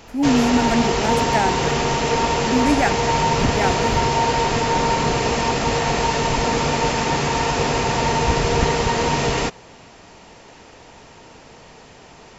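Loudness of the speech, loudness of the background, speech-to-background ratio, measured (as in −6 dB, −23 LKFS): −23.0 LKFS, −19.5 LKFS, −3.5 dB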